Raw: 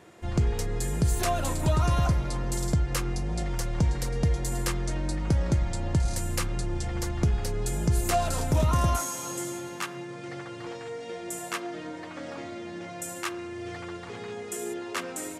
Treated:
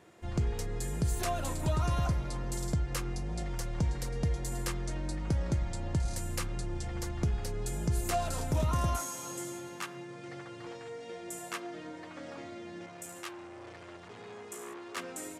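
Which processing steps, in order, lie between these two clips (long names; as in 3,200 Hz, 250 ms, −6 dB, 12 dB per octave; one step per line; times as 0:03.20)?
0:12.86–0:14.97: saturating transformer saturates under 3,200 Hz
level −6 dB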